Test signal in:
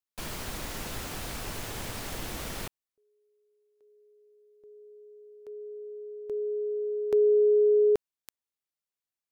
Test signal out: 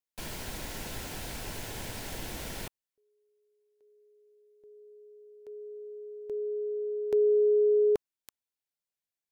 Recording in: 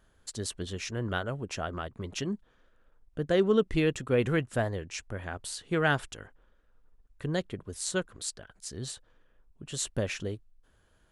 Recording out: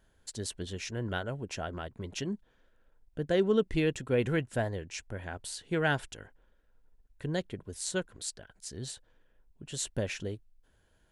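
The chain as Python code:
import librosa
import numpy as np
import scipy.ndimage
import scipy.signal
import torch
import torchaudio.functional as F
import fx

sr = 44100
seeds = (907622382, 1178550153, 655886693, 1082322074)

y = fx.notch(x, sr, hz=1200.0, q=5.5)
y = y * 10.0 ** (-2.0 / 20.0)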